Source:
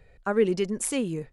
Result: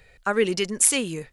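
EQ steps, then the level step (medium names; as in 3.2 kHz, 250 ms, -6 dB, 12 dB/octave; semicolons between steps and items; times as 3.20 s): tilt shelf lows -7 dB, about 1.2 kHz; +5.5 dB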